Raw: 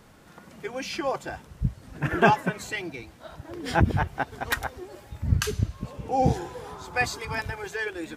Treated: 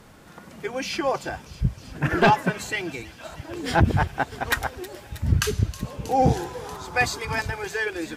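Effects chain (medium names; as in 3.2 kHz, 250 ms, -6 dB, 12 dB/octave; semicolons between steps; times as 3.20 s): feedback echo behind a high-pass 318 ms, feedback 83%, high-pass 3.3 kHz, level -14 dB; sine folder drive 6 dB, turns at -3.5 dBFS; trim -6 dB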